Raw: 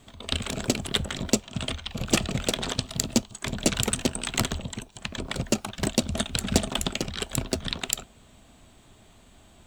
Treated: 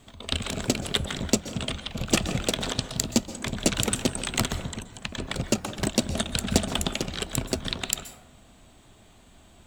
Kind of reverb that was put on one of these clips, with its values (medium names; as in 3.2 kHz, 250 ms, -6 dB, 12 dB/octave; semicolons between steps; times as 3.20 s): plate-style reverb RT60 0.95 s, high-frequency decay 0.35×, pre-delay 115 ms, DRR 11 dB